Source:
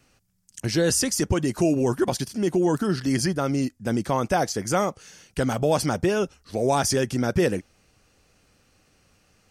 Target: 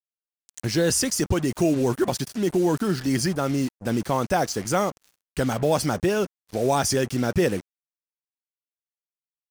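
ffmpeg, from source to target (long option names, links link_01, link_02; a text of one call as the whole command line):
ffmpeg -i in.wav -af "acrusher=bits=5:mix=0:aa=0.5" out.wav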